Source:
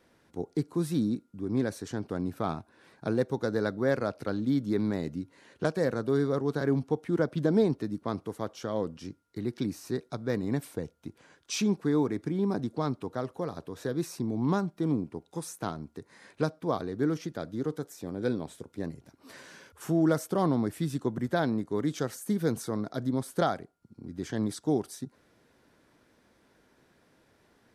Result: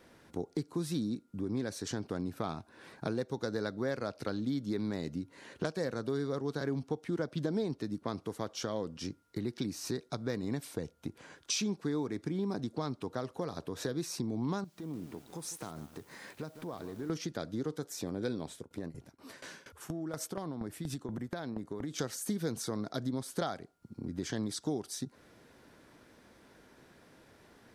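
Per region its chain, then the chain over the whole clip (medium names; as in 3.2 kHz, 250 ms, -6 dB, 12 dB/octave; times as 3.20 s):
14.64–17.10 s: compression 2.5:1, threshold -49 dBFS + word length cut 12-bit, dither triangular + bit-crushed delay 155 ms, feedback 55%, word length 9-bit, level -12 dB
18.47–21.99 s: tremolo saw down 4.2 Hz, depth 90% + compression, threshold -36 dBFS
whole clip: dynamic bell 4.9 kHz, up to +7 dB, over -56 dBFS, Q 0.73; compression 3:1, threshold -40 dBFS; trim +5 dB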